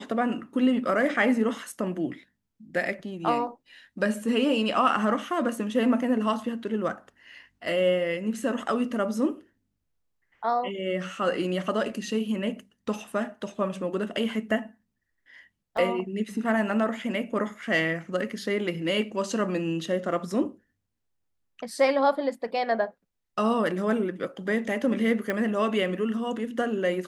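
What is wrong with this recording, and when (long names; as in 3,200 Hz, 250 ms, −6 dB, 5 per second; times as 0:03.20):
0:15.77: drop-out 3.8 ms
0:25.30: click −15 dBFS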